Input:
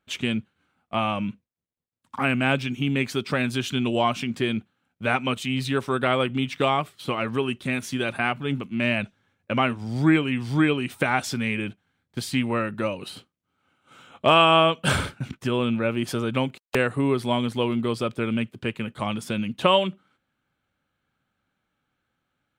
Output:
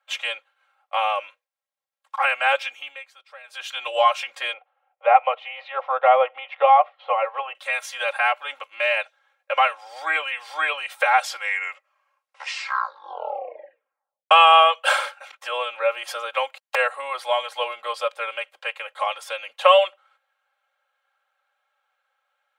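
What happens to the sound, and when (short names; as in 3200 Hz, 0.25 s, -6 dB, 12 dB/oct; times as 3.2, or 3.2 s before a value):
2.64–3.84 dip -21.5 dB, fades 0.41 s
4.53–7.55 speaker cabinet 420–2500 Hz, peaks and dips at 480 Hz +7 dB, 720 Hz +10 dB, 1600 Hz -9 dB, 2400 Hz -3 dB
11.21 tape stop 3.10 s
whole clip: steep high-pass 570 Hz 48 dB/oct; high shelf 3600 Hz -8.5 dB; comb 3.7 ms, depth 94%; gain +4 dB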